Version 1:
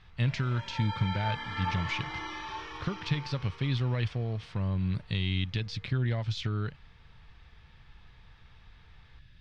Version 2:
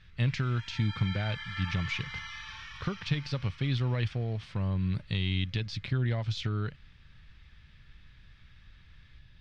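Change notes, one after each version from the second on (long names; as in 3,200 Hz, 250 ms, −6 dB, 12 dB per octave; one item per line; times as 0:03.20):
background: add high-pass filter 1,400 Hz 24 dB per octave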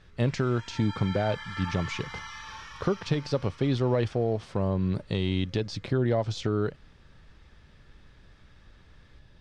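master: add drawn EQ curve 130 Hz 0 dB, 400 Hz +14 dB, 660 Hz +13 dB, 2,300 Hz −3 dB, 3,800 Hz −1 dB, 7,500 Hz +9 dB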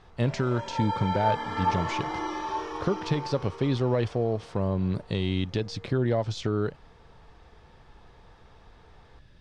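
background: remove high-pass filter 1,400 Hz 24 dB per octave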